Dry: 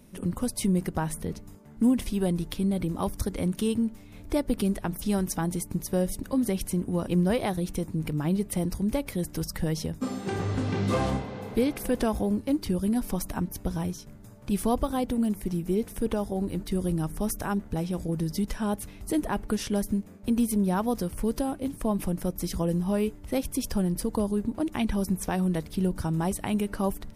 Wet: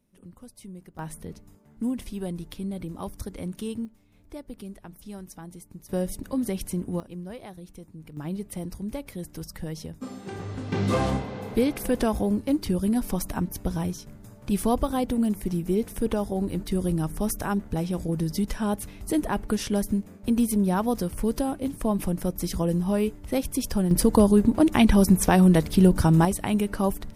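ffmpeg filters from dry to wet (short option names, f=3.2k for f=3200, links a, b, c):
-af "asetnsamples=n=441:p=0,asendcmd='0.99 volume volume -6dB;3.85 volume volume -13.5dB;5.89 volume volume -1.5dB;7 volume volume -14dB;8.17 volume volume -6dB;10.72 volume volume 2dB;23.91 volume volume 9.5dB;26.25 volume volume 3dB',volume=-17.5dB"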